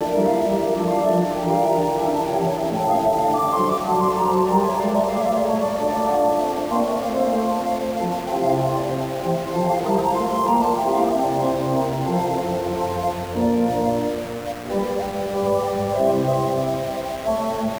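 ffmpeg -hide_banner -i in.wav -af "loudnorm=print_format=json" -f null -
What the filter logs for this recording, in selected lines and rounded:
"input_i" : "-21.2",
"input_tp" : "-5.6",
"input_lra" : "2.8",
"input_thresh" : "-31.2",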